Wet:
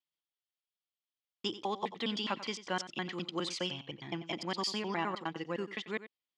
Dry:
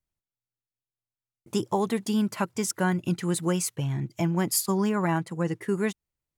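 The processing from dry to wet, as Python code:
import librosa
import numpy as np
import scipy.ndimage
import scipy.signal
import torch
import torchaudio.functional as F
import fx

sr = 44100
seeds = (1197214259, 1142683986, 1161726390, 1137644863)

p1 = fx.block_reorder(x, sr, ms=103.0, group=2)
p2 = fx.cabinet(p1, sr, low_hz=400.0, low_slope=12, high_hz=4900.0, hz=(410.0, 630.0, 930.0, 1500.0, 3200.0, 4700.0), db=(-6, -6, -4, -6, 9, 3))
p3 = p2 + fx.echo_single(p2, sr, ms=91, db=-14.0, dry=0)
y = p3 * librosa.db_to_amplitude(-2.0)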